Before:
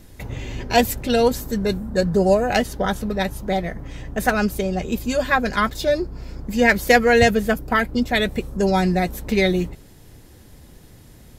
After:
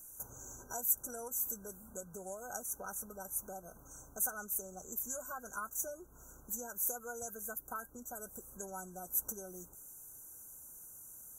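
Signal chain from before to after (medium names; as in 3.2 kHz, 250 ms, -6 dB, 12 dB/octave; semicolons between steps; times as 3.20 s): compression 4:1, threshold -26 dBFS, peak gain reduction 14.5 dB; pre-emphasis filter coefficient 0.97; FFT band-reject 1.6–5.8 kHz; trim +3.5 dB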